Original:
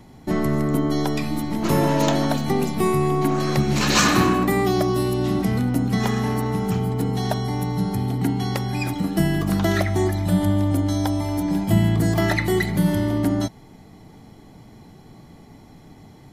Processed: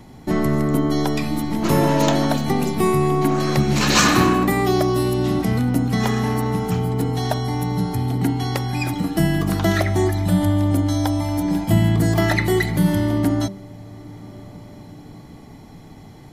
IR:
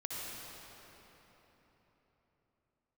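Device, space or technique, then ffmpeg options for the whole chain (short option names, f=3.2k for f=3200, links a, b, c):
ducked reverb: -filter_complex "[0:a]asplit=3[a][b][c];[1:a]atrim=start_sample=2205[d];[b][d]afir=irnorm=-1:irlink=0[e];[c]apad=whole_len=719972[f];[e][f]sidechaincompress=threshold=-36dB:ratio=8:attack=16:release=777,volume=-10.5dB[g];[a][g]amix=inputs=2:normalize=0,bandreject=f=195.5:t=h:w=4,bandreject=f=391:t=h:w=4,bandreject=f=586.5:t=h:w=4,volume=2dB"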